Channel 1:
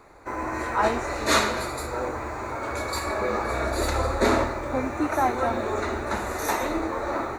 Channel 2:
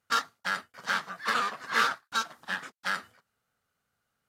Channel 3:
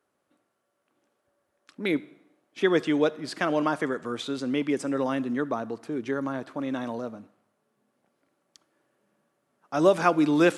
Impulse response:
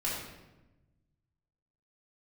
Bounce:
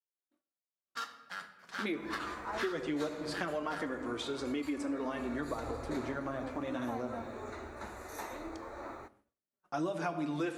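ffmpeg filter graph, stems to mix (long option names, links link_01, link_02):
-filter_complex "[0:a]adelay=1700,volume=-17dB,asplit=2[link_01][link_02];[link_02]volume=-23dB[link_03];[1:a]adelay=850,volume=-8.5dB,asplit=2[link_04][link_05];[link_05]volume=-17.5dB[link_06];[2:a]flanger=delay=2:depth=7.8:regen=5:speed=0.23:shape=triangular,volume=-2dB,asplit=3[link_07][link_08][link_09];[link_08]volume=-11.5dB[link_10];[link_09]apad=whole_len=230984[link_11];[link_04][link_11]sidechaingate=range=-6dB:threshold=-53dB:ratio=16:detection=peak[link_12];[3:a]atrim=start_sample=2205[link_13];[link_03][link_06][link_10]amix=inputs=3:normalize=0[link_14];[link_14][link_13]afir=irnorm=-1:irlink=0[link_15];[link_01][link_12][link_07][link_15]amix=inputs=4:normalize=0,agate=range=-33dB:threshold=-60dB:ratio=3:detection=peak,acompressor=threshold=-33dB:ratio=5"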